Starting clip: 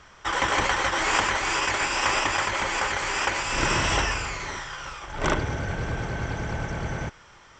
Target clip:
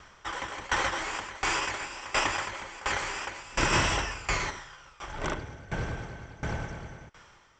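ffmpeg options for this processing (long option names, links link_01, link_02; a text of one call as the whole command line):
ffmpeg -i in.wav -filter_complex "[0:a]asplit=3[link_01][link_02][link_03];[link_01]afade=type=out:start_time=3.72:duration=0.02[link_04];[link_02]acontrast=50,afade=type=in:start_time=3.72:duration=0.02,afade=type=out:start_time=4.49:duration=0.02[link_05];[link_03]afade=type=in:start_time=4.49:duration=0.02[link_06];[link_04][link_05][link_06]amix=inputs=3:normalize=0,aeval=exprs='val(0)*pow(10,-20*if(lt(mod(1.4*n/s,1),2*abs(1.4)/1000),1-mod(1.4*n/s,1)/(2*abs(1.4)/1000),(mod(1.4*n/s,1)-2*abs(1.4)/1000)/(1-2*abs(1.4)/1000))/20)':channel_layout=same" out.wav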